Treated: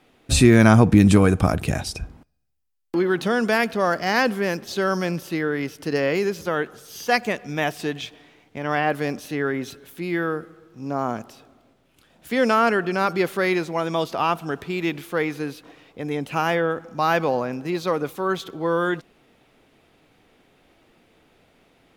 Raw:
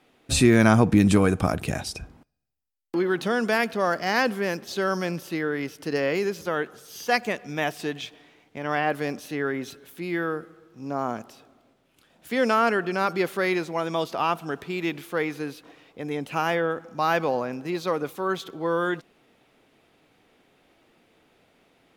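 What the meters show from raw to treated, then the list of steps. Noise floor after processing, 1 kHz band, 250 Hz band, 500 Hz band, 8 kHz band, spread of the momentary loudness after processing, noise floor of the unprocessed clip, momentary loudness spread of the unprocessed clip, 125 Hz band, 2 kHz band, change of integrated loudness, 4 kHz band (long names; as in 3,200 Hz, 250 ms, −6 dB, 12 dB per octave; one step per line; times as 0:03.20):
−60 dBFS, +2.5 dB, +3.5 dB, +3.0 dB, +2.5 dB, 15 LU, −64 dBFS, 13 LU, +5.5 dB, +2.5 dB, +3.0 dB, +2.5 dB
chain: low-shelf EQ 92 Hz +8.5 dB
level +2.5 dB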